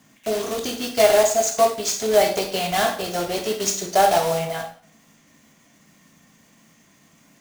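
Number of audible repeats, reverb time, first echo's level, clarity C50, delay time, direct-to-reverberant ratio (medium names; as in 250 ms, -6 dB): no echo, 0.50 s, no echo, 8.5 dB, no echo, 3.0 dB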